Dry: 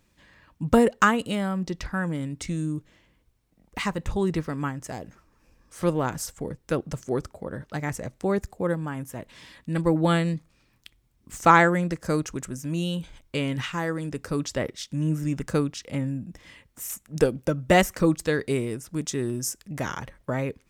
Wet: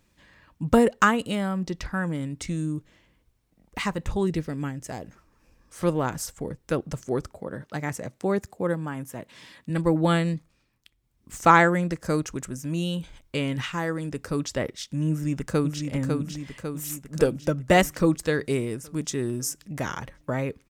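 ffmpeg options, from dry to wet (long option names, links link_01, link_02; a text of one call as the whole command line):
ffmpeg -i in.wav -filter_complex "[0:a]asettb=1/sr,asplit=3[link_01][link_02][link_03];[link_01]atrim=end=4.274[link_04];[link_02]atrim=start=4.27:end=4.88,asetpts=PTS-STARTPTS,afade=type=in:duration=0.004:curve=qsin,afade=type=out:start_time=0.606:duration=0.004:curve=qsin,equalizer=frequency=1100:width_type=o:width=0.91:gain=-10.5[link_05];[link_03]atrim=start=4.876[link_06];[link_04][link_05]acrossfade=duration=0.004:curve1=hsin:curve2=qsin[link_07];[link_07][link_06]acrossfade=duration=0.004:curve1=qsin:curve2=hsin,asettb=1/sr,asplit=3[link_08][link_09][link_10];[link_08]atrim=end=7.404[link_11];[link_09]atrim=start=7.4:end=9.7,asetpts=PTS-STARTPTS,afade=type=in:duration=0.004:curve=qsin,afade=type=out:start_time=2.296:duration=0.004:curve=qsin,highpass=110[link_12];[link_10]atrim=start=9.696[link_13];[link_11][link_12]acrossfade=duration=0.004:curve1=hsin:curve2=qsin[link_14];[link_14][link_13]acrossfade=duration=0.004:curve1=qsin:curve2=hsin,asplit=2[link_15][link_16];[link_16]afade=type=in:start_time=15.09:duration=0.01,afade=type=out:start_time=15.83:duration=0.01,aecho=0:1:550|1100|1650|2200|2750|3300|3850|4400|4950:0.595662|0.357397|0.214438|0.128663|0.0771978|0.0463187|0.0277912|0.0166747|0.0100048[link_17];[link_15][link_17]amix=inputs=2:normalize=0,asplit=3[link_18][link_19][link_20];[link_18]atrim=end=10.72,asetpts=PTS-STARTPTS,afade=type=out:start_time=10.33:duration=0.39:silence=0.398107[link_21];[link_19]atrim=start=10.72:end=10.96,asetpts=PTS-STARTPTS,volume=-8dB[link_22];[link_20]atrim=start=10.96,asetpts=PTS-STARTPTS,afade=type=in:duration=0.39:silence=0.398107[link_23];[link_21][link_22][link_23]concat=n=3:v=0:a=1" out.wav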